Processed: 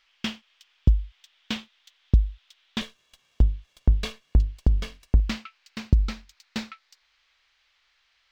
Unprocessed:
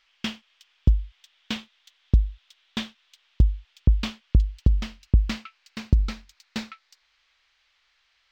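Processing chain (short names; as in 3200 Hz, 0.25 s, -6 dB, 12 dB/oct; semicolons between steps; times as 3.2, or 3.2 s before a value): 2.81–5.2 minimum comb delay 1.8 ms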